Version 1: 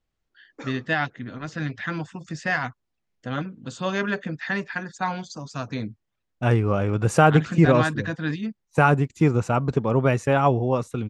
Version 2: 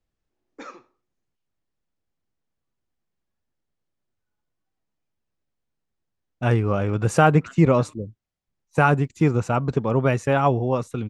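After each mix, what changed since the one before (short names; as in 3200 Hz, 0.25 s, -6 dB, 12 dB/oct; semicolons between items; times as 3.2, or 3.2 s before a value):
first voice: muted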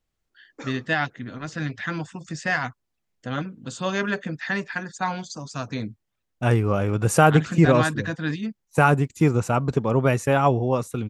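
first voice: unmuted; master: remove air absorption 61 m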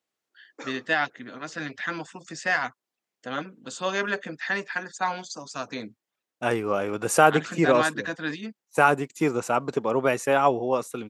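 master: add HPF 320 Hz 12 dB/oct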